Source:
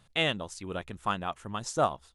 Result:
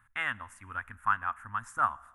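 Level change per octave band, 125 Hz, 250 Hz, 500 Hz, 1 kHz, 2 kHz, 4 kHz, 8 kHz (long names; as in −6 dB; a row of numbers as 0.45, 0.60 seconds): −10.0 dB, −15.5 dB, −18.5 dB, +1.5 dB, +2.5 dB, below −15 dB, below −10 dB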